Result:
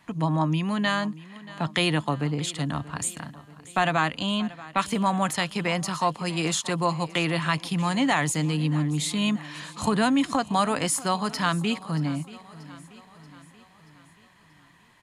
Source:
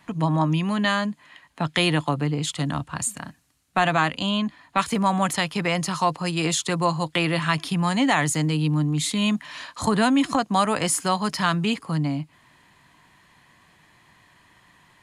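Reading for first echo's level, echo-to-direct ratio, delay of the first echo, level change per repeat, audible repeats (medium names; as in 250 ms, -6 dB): -18.5 dB, -17.0 dB, 632 ms, -5.5 dB, 4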